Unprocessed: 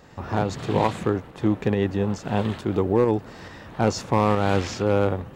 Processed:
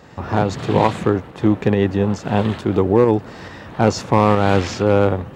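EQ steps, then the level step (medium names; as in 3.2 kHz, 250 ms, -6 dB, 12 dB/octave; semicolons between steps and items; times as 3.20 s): high-pass 54 Hz; treble shelf 7.6 kHz -6 dB; +6.0 dB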